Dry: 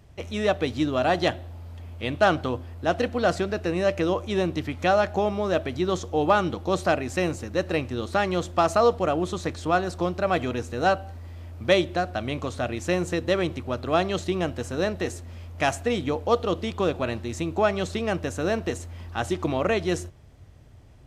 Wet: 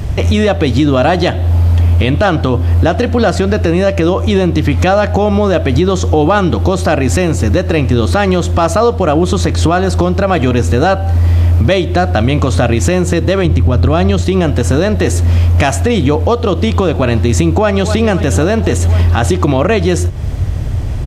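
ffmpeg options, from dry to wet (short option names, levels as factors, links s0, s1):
-filter_complex "[0:a]asettb=1/sr,asplit=3[s0][s1][s2];[s0]atrim=end=13.454[s3];[s1]atrim=start=13.45:end=14.22,asetpts=PTS-STARTPTS,afade=t=in:d=0.004:c=qsin,afade=t=out:st=0.766:d=0.004:c=qsin,lowshelf=f=160:g=10.5[s4];[s2]atrim=start=14.216[s5];[s3][s4]acrossfade=d=0.004:c1=hsin:c2=qsin[s6];[s6][s5]acrossfade=d=0.004:c1=qsin:c2=hsin,asplit=2[s7][s8];[s8]afade=t=in:st=17.54:d=0.01,afade=t=out:st=17.99:d=0.01,aecho=0:1:260|520|780|1040|1300|1560|1820|2080:0.149624|0.104736|0.0733155|0.0513209|0.0359246|0.0251472|0.0176031|0.0123221[s9];[s7][s9]amix=inputs=2:normalize=0,lowshelf=f=150:g=10,acompressor=threshold=0.02:ratio=5,alimiter=level_in=25.1:limit=0.891:release=50:level=0:latency=1,volume=0.891"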